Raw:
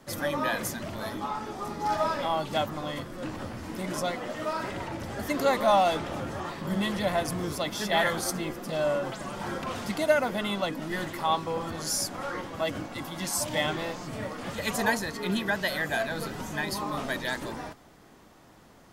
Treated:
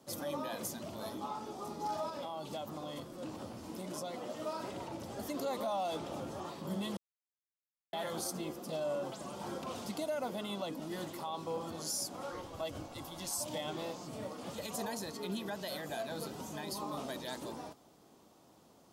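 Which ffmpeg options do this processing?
-filter_complex "[0:a]asettb=1/sr,asplit=3[s0][s1][s2];[s0]atrim=end=2.094[s3];[s1]atrim=start=2.09:end=4.14,asetpts=PTS-STARTPTS,afade=t=in:d=0.004:c=qsin,afade=t=out:st=2.046:d=0.004:c=qsin,acompressor=threshold=0.0316:ratio=6:attack=3.2:release=140:knee=1:detection=peak[s4];[s2]atrim=start=4.136[s5];[s3][s4]acrossfade=d=0.004:c1=hsin:c2=qsin[s6];[s6][s5]acrossfade=d=0.004:c1=qsin:c2=hsin,asplit=3[s7][s8][s9];[s7]afade=t=out:st=12.3:d=0.02[s10];[s8]asubboost=boost=9:cutoff=64,afade=t=in:st=12.3:d=0.02,afade=t=out:st=13.38:d=0.02[s11];[s9]afade=t=in:st=13.38:d=0.02[s12];[s10][s11][s12]amix=inputs=3:normalize=0,asplit=3[s13][s14][s15];[s13]atrim=end=6.97,asetpts=PTS-STARTPTS,afade=t=out:st=6.966:d=0.004:c=hsin[s16];[s14]atrim=start=6.97:end=7.93,asetpts=PTS-STARTPTS,volume=0[s17];[s15]atrim=start=7.93,asetpts=PTS-STARTPTS,afade=t=in:d=0.004:c=hsin[s18];[s16][s17][s18]concat=n=3:v=0:a=1,alimiter=limit=0.0841:level=0:latency=1:release=72,highpass=f=210:p=1,equalizer=f=1800:t=o:w=1:g=-12.5,volume=0.596"

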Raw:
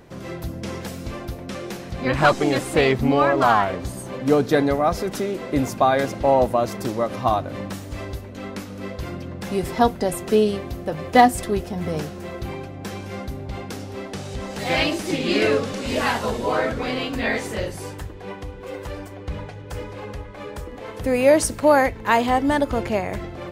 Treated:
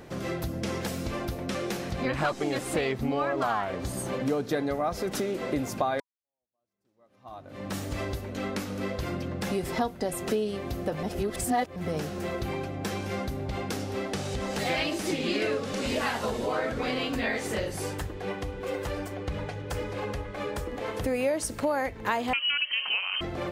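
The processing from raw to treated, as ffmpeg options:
-filter_complex "[0:a]asettb=1/sr,asplit=3[s0][s1][s2];[s0]atrim=end=22.334[s3];[s1]atrim=start=22.33:end=23.21,asetpts=PTS-STARTPTS,afade=t=in:d=0.004:c=qsin,afade=t=out:st=0.876:d=0.004:c=qsin,lowpass=f=2700:t=q:w=0.5098,lowpass=f=2700:t=q:w=0.6013,lowpass=f=2700:t=q:w=0.9,lowpass=f=2700:t=q:w=2.563,afreqshift=-3200[s4];[s2]atrim=start=23.206[s5];[s3][s4]acrossfade=d=0.004:c1=hsin:c2=qsin[s6];[s6][s5]acrossfade=d=0.004:c1=qsin:c2=hsin,asplit=4[s7][s8][s9][s10];[s7]atrim=end=6,asetpts=PTS-STARTPTS,afade=t=out:st=5.996:d=0.004:c=hsin[s11];[s8]atrim=start=6:end=11.032,asetpts=PTS-STARTPTS,afade=t=in:d=1.78:c=exp[s12];[s9]atrim=start=11.028:end=11.762,asetpts=PTS-STARTPTS,areverse[s13];[s10]atrim=start=11.758[s14];[s11][s12]concat=n=2:v=0:a=1[s15];[s15][s13]acrossfade=d=0.004:c1=hsin:c2=hsin[s16];[s16][s14]acrossfade=d=0.004:c1=hsin:c2=hsin,acompressor=threshold=0.0355:ratio=4,lowshelf=f=160:g=-3.5,bandreject=f=980:w=26,volume=1.33"

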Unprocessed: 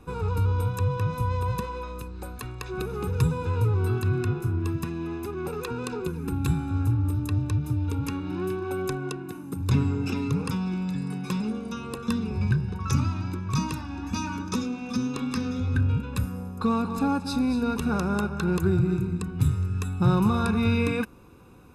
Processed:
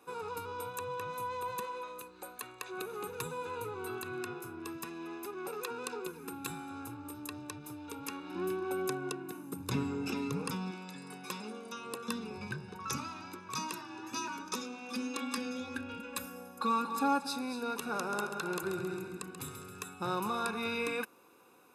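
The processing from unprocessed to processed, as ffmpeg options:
-filter_complex "[0:a]asettb=1/sr,asplit=3[s0][s1][s2];[s0]atrim=end=0.674[s3];[s1]atrim=start=0.67:end=4.22,asetpts=PTS-STARTPTS,afade=t=in:d=0.004:c=qsin,afade=t=out:st=3.546:d=0.004:c=qsin,bandreject=f=5200:w=8.1[s4];[s2]atrim=start=4.216[s5];[s3][s4]acrossfade=d=0.004:c1=hsin:c2=qsin[s6];[s6][s5]acrossfade=d=0.004:c1=qsin:c2=hsin,asettb=1/sr,asplit=3[s7][s8][s9];[s7]atrim=end=8.354[s10];[s8]atrim=start=8.35:end=10.71,asetpts=PTS-STARTPTS,afade=t=in:d=0.004:c=qsin,afade=t=out:st=2.356:d=0.004:c=qsin,equalizer=f=120:t=o:w=2.6:g=11.5[s11];[s9]atrim=start=10.706[s12];[s10][s11]acrossfade=d=0.004:c1=hsin:c2=qsin[s13];[s13][s12]acrossfade=d=0.004:c1=qsin:c2=hsin,asettb=1/sr,asplit=3[s14][s15][s16];[s14]atrim=end=11.854[s17];[s15]atrim=start=11.85:end=12.98,asetpts=PTS-STARTPTS,afade=t=in:d=0.004:c=qsin,afade=t=out:st=1.126:d=0.004:c=qsin,equalizer=f=89:w=0.38:g=6[s18];[s16]atrim=start=12.976[s19];[s17][s18]acrossfade=d=0.004:c1=hsin:c2=qsin[s20];[s20][s19]acrossfade=d=0.004:c1=qsin:c2=hsin,asettb=1/sr,asplit=3[s21][s22][s23];[s21]atrim=end=13.724[s24];[s22]atrim=start=13.72:end=14.28,asetpts=PTS-STARTPTS,afade=t=in:d=0.004:c=qsin,afade=t=out:st=0.556:d=0.004:c=qsin,afreqshift=38[s25];[s23]atrim=start=14.276[s26];[s24][s25]acrossfade=d=0.004:c1=hsin:c2=qsin[s27];[s27][s26]acrossfade=d=0.004:c1=qsin:c2=hsin,asettb=1/sr,asplit=3[s28][s29][s30];[s28]atrim=end=14.924[s31];[s29]atrim=start=14.92:end=17.27,asetpts=PTS-STARTPTS,afade=t=in:d=0.004:c=qsin,afade=t=out:st=2.346:d=0.004:c=qsin,aecho=1:1:3.6:0.82,atrim=end_sample=103635[s32];[s30]atrim=start=17.266[s33];[s31][s32]acrossfade=d=0.004:c1=hsin:c2=qsin[s34];[s34][s33]acrossfade=d=0.004:c1=qsin:c2=hsin,asettb=1/sr,asplit=3[s35][s36][s37];[s35]atrim=end=17.814[s38];[s36]atrim=start=17.81:end=19.94,asetpts=PTS-STARTPTS,afade=t=in:d=0.004:c=qsin,afade=t=out:st=2.126:d=0.004:c=qsin,aecho=1:1:135|270|405|540|675|810|945:0.376|0.21|0.118|0.066|0.037|0.0207|0.0116,atrim=end_sample=93933[s39];[s37]atrim=start=19.936[s40];[s38][s39]acrossfade=d=0.004:c1=hsin:c2=qsin[s41];[s41][s40]acrossfade=d=0.004:c1=qsin:c2=hsin,highpass=440,highshelf=f=9200:g=7.5,volume=0.596"

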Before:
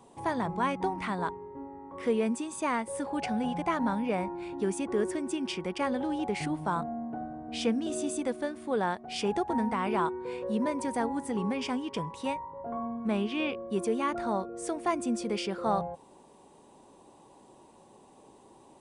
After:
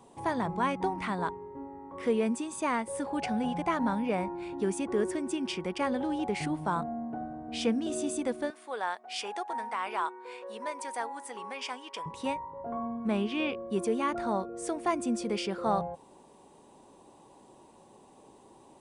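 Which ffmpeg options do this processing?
-filter_complex "[0:a]asettb=1/sr,asplit=3[s0][s1][s2];[s0]atrim=end=8.504[s3];[s1]atrim=start=8.5:end=12.06,asetpts=PTS-STARTPTS,afade=t=in:d=0.004:c=qsin,afade=t=out:st=3.556:d=0.004:c=qsin,highpass=740[s4];[s2]atrim=start=12.056[s5];[s3][s4]acrossfade=d=0.004:c1=hsin:c2=qsin[s6];[s6][s5]acrossfade=d=0.004:c1=qsin:c2=hsin"

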